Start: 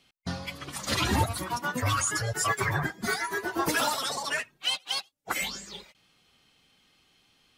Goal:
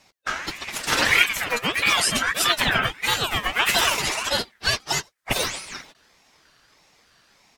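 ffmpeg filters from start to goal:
-filter_complex "[0:a]asplit=3[a][b][c];[b]asetrate=22050,aresample=44100,atempo=2,volume=-5dB[d];[c]asetrate=37084,aresample=44100,atempo=1.18921,volume=-11dB[e];[a][d][e]amix=inputs=3:normalize=0,aeval=exprs='val(0)*sin(2*PI*1900*n/s+1900*0.25/1.6*sin(2*PI*1.6*n/s))':c=same,volume=8dB"

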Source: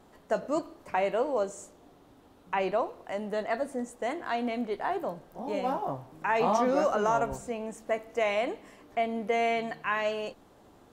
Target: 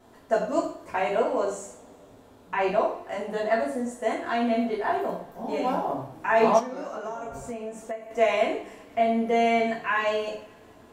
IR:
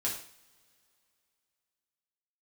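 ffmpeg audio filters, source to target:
-filter_complex "[1:a]atrim=start_sample=2205[a];[0:a][a]afir=irnorm=-1:irlink=0,asettb=1/sr,asplit=3[b][c][d];[b]atrim=end=6.594[e];[c]atrim=start=6.59:end=8.11,asetpts=PTS-STARTPTS,afade=t=in:d=0.004:c=qsin,afade=t=out:st=1.516:d=0.004:c=qsin,acompressor=threshold=-31dB:ratio=12[f];[d]atrim=start=8.106[g];[e][f]acrossfade=d=0.004:c1=hsin:c2=qsin[h];[h][g]acrossfade=d=0.004:c1=qsin:c2=hsin"

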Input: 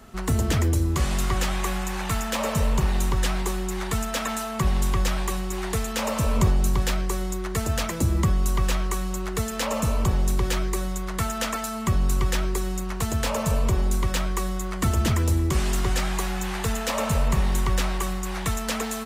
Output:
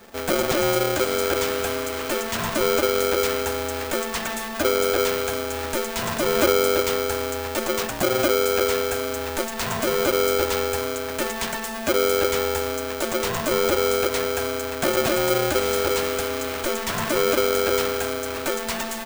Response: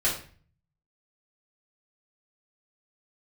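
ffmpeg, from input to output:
-af "aeval=exprs='val(0)*sgn(sin(2*PI*450*n/s))':c=same"

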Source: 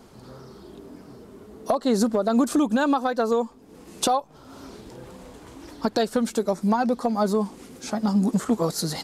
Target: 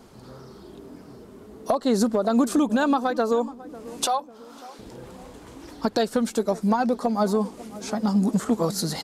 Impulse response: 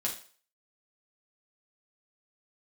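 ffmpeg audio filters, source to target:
-filter_complex "[0:a]asettb=1/sr,asplit=3[a][b][c];[a]atrim=end=4.064[d];[b]atrim=start=4.06:end=4.79,asetpts=PTS-STARTPTS,afade=t=in:d=0.004:c=qsin,afade=t=out:st=0.726:d=0.004:c=qsin,highpass=650[e];[c]atrim=start=4.786[f];[d][e]acrossfade=d=0.004:c1=hsin:c2=qsin[g];[g][f]acrossfade=d=0.004:c1=qsin:c2=hsin,asplit=2[h][i];[i]adelay=547,lowpass=f=1k:p=1,volume=-17dB,asplit=2[j][k];[k]adelay=547,lowpass=f=1k:p=1,volume=0.52,asplit=2[l][m];[m]adelay=547,lowpass=f=1k:p=1,volume=0.52,asplit=2[n][o];[o]adelay=547,lowpass=f=1k:p=1,volume=0.52,asplit=2[p][q];[q]adelay=547,lowpass=f=1k:p=1,volume=0.52[r];[h][j][l][n][p][r]amix=inputs=6:normalize=0"

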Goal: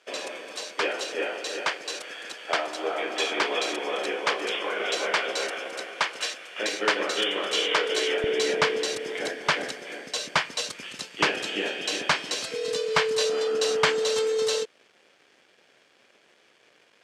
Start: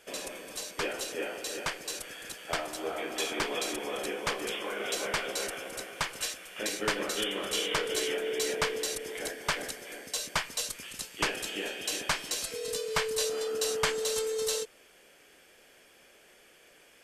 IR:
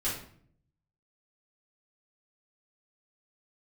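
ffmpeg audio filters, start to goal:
-af "aeval=exprs='sgn(val(0))*max(abs(val(0))-0.00112,0)':c=same,asetnsamples=n=441:p=0,asendcmd='8.24 highpass f 150',highpass=360,lowpass=4.9k,volume=7.5dB"

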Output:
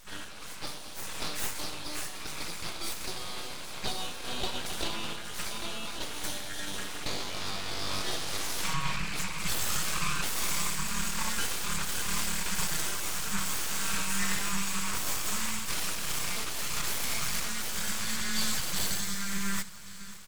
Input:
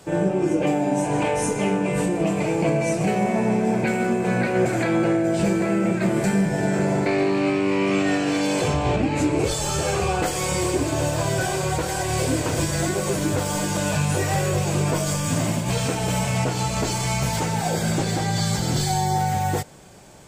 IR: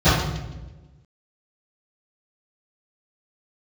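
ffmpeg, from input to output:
-af "aecho=1:1:550|1100|1650|2200|2750|3300:0.15|0.0883|0.0521|0.0307|0.0181|0.0107,afftfilt=real='re*(1-between(b*sr/4096,110,980))':imag='im*(1-between(b*sr/4096,110,980))':win_size=4096:overlap=0.75,aeval=exprs='abs(val(0))':c=same"

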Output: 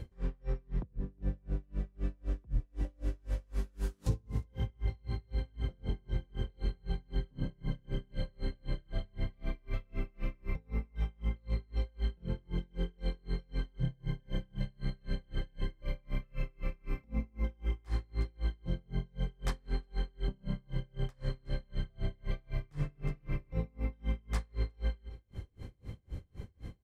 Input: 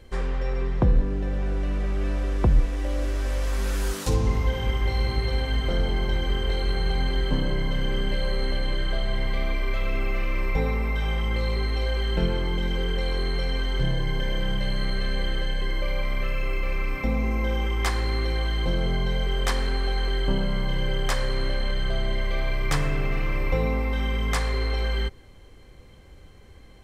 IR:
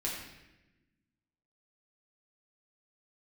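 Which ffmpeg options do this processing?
-af "equalizer=f=110:t=o:w=3:g=15,acompressor=threshold=-30dB:ratio=4,aecho=1:1:362:0.15,aeval=exprs='val(0)*pow(10,-36*(0.5-0.5*cos(2*PI*3.9*n/s))/20)':c=same"

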